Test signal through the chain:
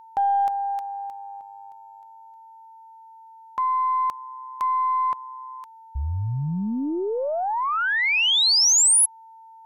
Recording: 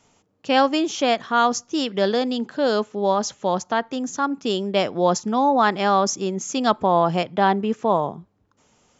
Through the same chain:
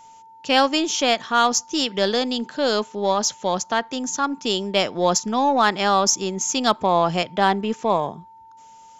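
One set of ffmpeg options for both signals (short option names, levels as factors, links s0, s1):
-af "aeval=exprs='val(0)+0.00631*sin(2*PI*900*n/s)':c=same,aeval=exprs='0.631*(cos(1*acos(clip(val(0)/0.631,-1,1)))-cos(1*PI/2))+0.00398*(cos(6*acos(clip(val(0)/0.631,-1,1)))-cos(6*PI/2))+0.00891*(cos(8*acos(clip(val(0)/0.631,-1,1)))-cos(8*PI/2))':c=same,highshelf=f=2400:g=10,volume=0.841"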